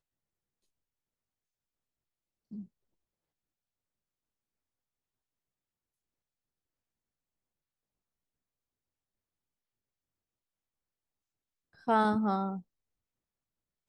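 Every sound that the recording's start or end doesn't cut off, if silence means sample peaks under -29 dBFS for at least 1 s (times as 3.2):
11.88–12.52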